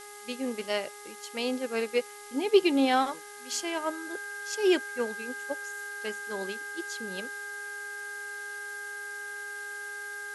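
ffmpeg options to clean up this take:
-af "bandreject=f=412.2:t=h:w=4,bandreject=f=824.4:t=h:w=4,bandreject=f=1.2366k:t=h:w=4,bandreject=f=1.6488k:t=h:w=4,bandreject=f=2.061k:t=h:w=4,bandreject=f=1.6k:w=30,afftdn=nr=30:nf=-45"

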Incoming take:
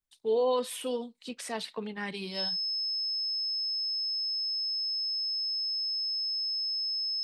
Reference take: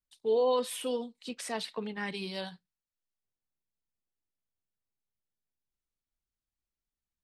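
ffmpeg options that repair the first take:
-af "bandreject=f=5.2k:w=30"

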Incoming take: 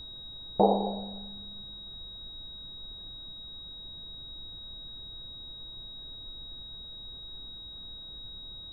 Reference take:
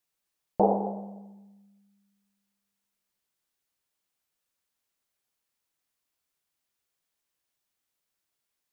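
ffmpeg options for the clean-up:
-af "bandreject=f=3.8k:w=30,afftdn=nr=30:nf=-44"

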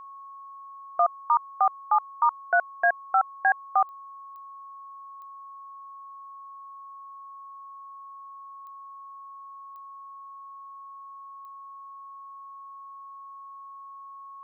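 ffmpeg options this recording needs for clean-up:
-af "adeclick=t=4,bandreject=f=1.1k:w=30"

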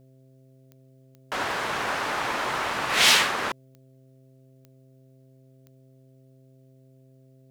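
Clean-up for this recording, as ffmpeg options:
-af "adeclick=t=4,bandreject=f=131.5:t=h:w=4,bandreject=f=263:t=h:w=4,bandreject=f=394.5:t=h:w=4,bandreject=f=526:t=h:w=4,bandreject=f=657.5:t=h:w=4"

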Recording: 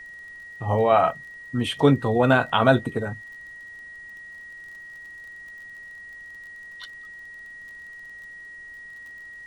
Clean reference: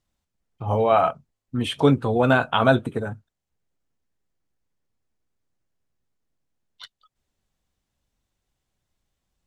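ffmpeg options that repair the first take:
-af "adeclick=t=4,bandreject=f=1.9k:w=30,agate=range=-21dB:threshold=-34dB"

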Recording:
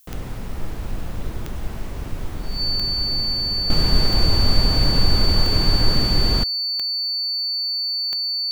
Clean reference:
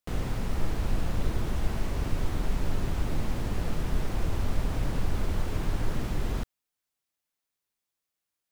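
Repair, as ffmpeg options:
-af "adeclick=t=4,bandreject=f=4.5k:w=30,agate=range=-21dB:threshold=-20dB,asetnsamples=n=441:p=0,asendcmd='3.7 volume volume -10dB',volume=0dB"

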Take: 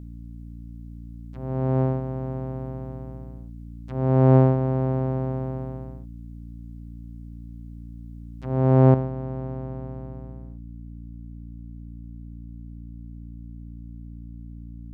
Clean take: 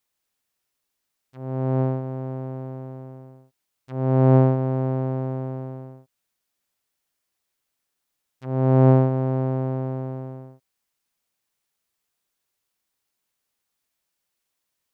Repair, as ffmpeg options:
-af "bandreject=f=57.8:t=h:w=4,bandreject=f=115.6:t=h:w=4,bandreject=f=173.4:t=h:w=4,bandreject=f=231.2:t=h:w=4,bandreject=f=289:t=h:w=4,asetnsamples=n=441:p=0,asendcmd='8.94 volume volume 8.5dB',volume=0dB"

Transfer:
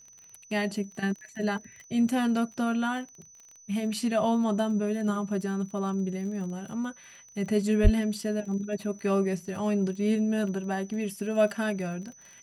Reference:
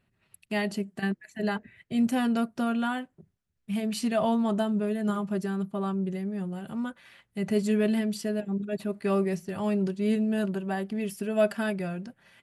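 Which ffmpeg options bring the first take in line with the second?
-filter_complex "[0:a]adeclick=t=4,bandreject=f=6k:w=30,asplit=3[a][b][c];[a]afade=t=out:st=7.83:d=0.02[d];[b]highpass=f=140:w=0.5412,highpass=f=140:w=1.3066,afade=t=in:st=7.83:d=0.02,afade=t=out:st=7.95:d=0.02[e];[c]afade=t=in:st=7.95:d=0.02[f];[d][e][f]amix=inputs=3:normalize=0"

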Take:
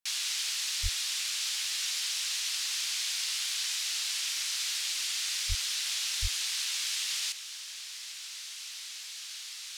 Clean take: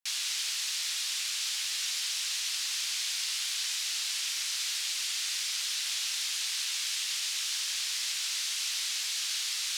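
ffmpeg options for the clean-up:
-filter_complex "[0:a]asplit=3[a][b][c];[a]afade=t=out:st=0.82:d=0.02[d];[b]highpass=f=140:w=0.5412,highpass=f=140:w=1.3066,afade=t=in:st=0.82:d=0.02,afade=t=out:st=0.94:d=0.02[e];[c]afade=t=in:st=0.94:d=0.02[f];[d][e][f]amix=inputs=3:normalize=0,asplit=3[g][h][i];[g]afade=t=out:st=5.48:d=0.02[j];[h]highpass=f=140:w=0.5412,highpass=f=140:w=1.3066,afade=t=in:st=5.48:d=0.02,afade=t=out:st=5.6:d=0.02[k];[i]afade=t=in:st=5.6:d=0.02[l];[j][k][l]amix=inputs=3:normalize=0,asplit=3[m][n][o];[m]afade=t=out:st=6.21:d=0.02[p];[n]highpass=f=140:w=0.5412,highpass=f=140:w=1.3066,afade=t=in:st=6.21:d=0.02,afade=t=out:st=6.33:d=0.02[q];[o]afade=t=in:st=6.33:d=0.02[r];[p][q][r]amix=inputs=3:normalize=0,asetnsamples=n=441:p=0,asendcmd='7.32 volume volume 9.5dB',volume=0dB"

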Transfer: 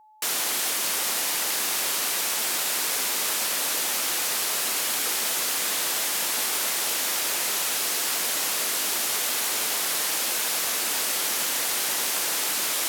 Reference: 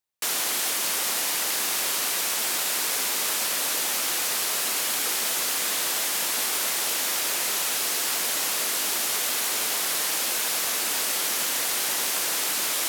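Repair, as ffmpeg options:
-af "bandreject=f=860:w=30"

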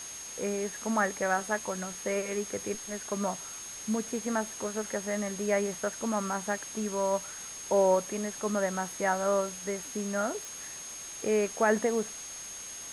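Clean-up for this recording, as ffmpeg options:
-af "adeclick=t=4,bandreject=f=6.5k:w=30,afwtdn=0.0063"

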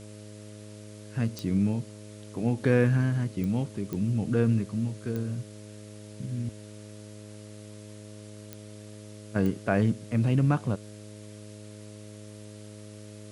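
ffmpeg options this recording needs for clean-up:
-af "adeclick=t=4,bandreject=f=105.1:t=h:w=4,bandreject=f=210.2:t=h:w=4,bandreject=f=315.3:t=h:w=4,bandreject=f=420.4:t=h:w=4,bandreject=f=525.5:t=h:w=4,bandreject=f=630.6:t=h:w=4,afwtdn=0.0022"

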